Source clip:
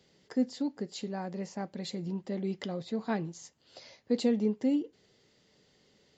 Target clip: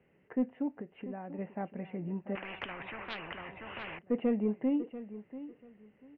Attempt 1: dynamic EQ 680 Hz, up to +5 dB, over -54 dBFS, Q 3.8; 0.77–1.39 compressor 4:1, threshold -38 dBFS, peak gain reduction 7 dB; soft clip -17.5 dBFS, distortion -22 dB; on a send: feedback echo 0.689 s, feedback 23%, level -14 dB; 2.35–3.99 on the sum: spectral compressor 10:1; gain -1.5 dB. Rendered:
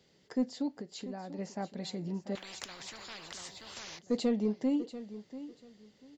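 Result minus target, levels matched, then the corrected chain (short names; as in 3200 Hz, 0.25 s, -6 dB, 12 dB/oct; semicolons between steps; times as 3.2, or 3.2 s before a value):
2000 Hz band -5.5 dB
dynamic EQ 680 Hz, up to +5 dB, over -54 dBFS, Q 3.8; steep low-pass 2800 Hz 96 dB/oct; 0.77–1.39 compressor 4:1, threshold -38 dBFS, peak gain reduction 7 dB; soft clip -17.5 dBFS, distortion -22 dB; on a send: feedback echo 0.689 s, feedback 23%, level -14 dB; 2.35–3.99 on the sum: spectral compressor 10:1; gain -1.5 dB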